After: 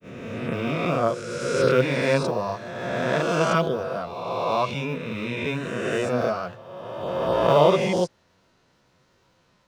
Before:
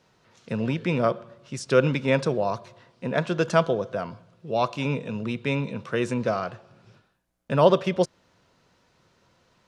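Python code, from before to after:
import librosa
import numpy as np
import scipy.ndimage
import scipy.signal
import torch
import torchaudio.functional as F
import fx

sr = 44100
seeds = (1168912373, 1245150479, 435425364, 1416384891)

y = fx.spec_swells(x, sr, rise_s=2.07)
y = fx.quant_companded(y, sr, bits=8)
y = fx.granulator(y, sr, seeds[0], grain_ms=156.0, per_s=20.0, spray_ms=26.0, spread_st=0)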